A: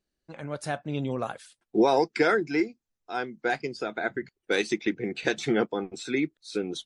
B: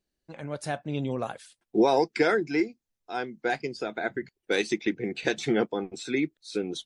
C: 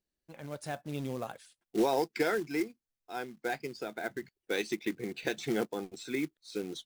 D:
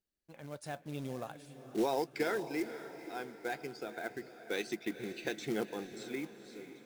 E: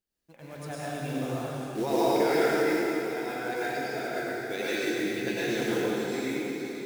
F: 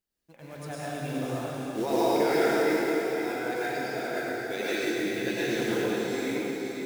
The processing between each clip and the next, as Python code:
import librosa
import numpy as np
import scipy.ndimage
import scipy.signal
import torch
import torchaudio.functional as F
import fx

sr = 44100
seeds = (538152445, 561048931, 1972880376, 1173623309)

y1 = fx.peak_eq(x, sr, hz=1300.0, db=-3.5, octaves=0.53)
y2 = fx.quant_float(y1, sr, bits=2)
y2 = y2 * 10.0 ** (-6.5 / 20.0)
y3 = fx.fade_out_tail(y2, sr, length_s=0.93)
y3 = fx.echo_diffused(y3, sr, ms=489, feedback_pct=48, wet_db=-12)
y3 = y3 * 10.0 ** (-4.0 / 20.0)
y4 = fx.rev_plate(y3, sr, seeds[0], rt60_s=2.8, hf_ratio=0.9, predelay_ms=85, drr_db=-9.5)
y5 = y4 + 10.0 ** (-9.0 / 20.0) * np.pad(y4, (int(524 * sr / 1000.0), 0))[:len(y4)]